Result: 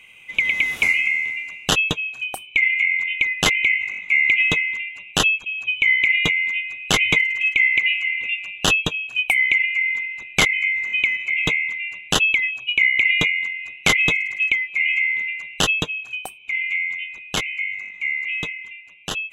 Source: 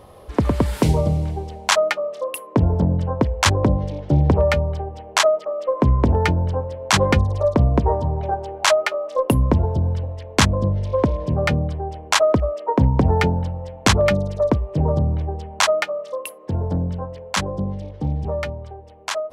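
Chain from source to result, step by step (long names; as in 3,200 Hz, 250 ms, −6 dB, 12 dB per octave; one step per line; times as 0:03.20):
neighbouring bands swapped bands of 2,000 Hz
tilt shelving filter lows +3 dB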